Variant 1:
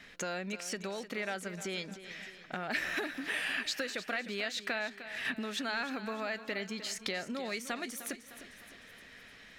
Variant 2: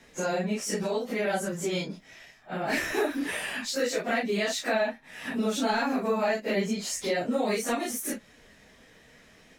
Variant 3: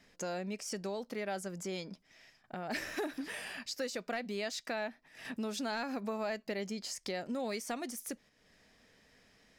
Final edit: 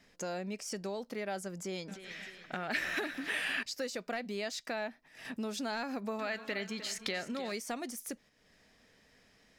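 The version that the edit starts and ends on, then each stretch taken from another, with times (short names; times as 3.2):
3
1.88–3.63 from 1
6.19–7.52 from 1
not used: 2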